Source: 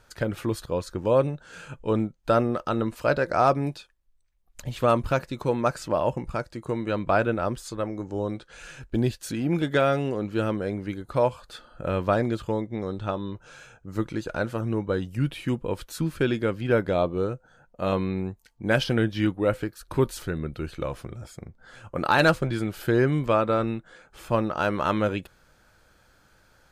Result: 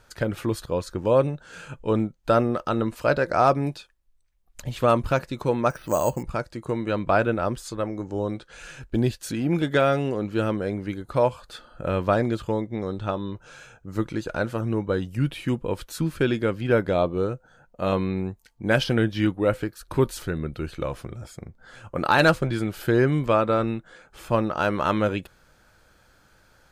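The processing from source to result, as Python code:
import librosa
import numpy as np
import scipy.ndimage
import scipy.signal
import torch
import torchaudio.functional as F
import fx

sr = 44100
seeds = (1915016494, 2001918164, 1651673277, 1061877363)

y = fx.resample_bad(x, sr, factor=6, down='filtered', up='hold', at=(5.7, 6.23))
y = y * 10.0 ** (1.5 / 20.0)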